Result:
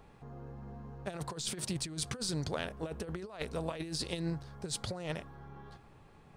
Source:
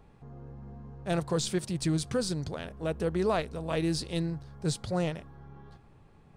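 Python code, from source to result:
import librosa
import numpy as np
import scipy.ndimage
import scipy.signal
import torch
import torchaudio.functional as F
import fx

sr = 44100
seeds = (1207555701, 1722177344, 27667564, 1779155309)

y = fx.low_shelf(x, sr, hz=380.0, db=-6.5)
y = fx.over_compress(y, sr, threshold_db=-36.0, ratio=-0.5)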